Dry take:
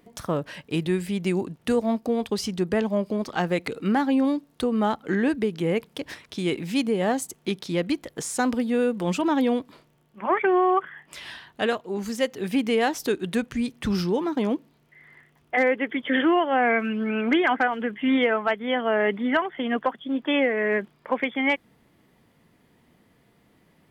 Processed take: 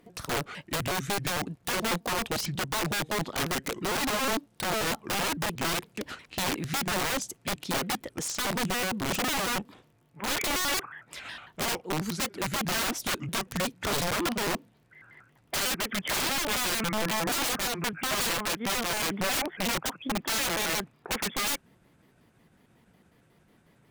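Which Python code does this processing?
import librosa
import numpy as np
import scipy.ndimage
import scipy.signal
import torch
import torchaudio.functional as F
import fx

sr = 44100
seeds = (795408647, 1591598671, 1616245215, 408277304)

y = fx.pitch_trill(x, sr, semitones=-4.5, every_ms=91)
y = fx.cheby_harmonics(y, sr, harmonics=(7,), levels_db=(-37,), full_scale_db=-11.0)
y = (np.mod(10.0 ** (23.5 / 20.0) * y + 1.0, 2.0) - 1.0) / 10.0 ** (23.5 / 20.0)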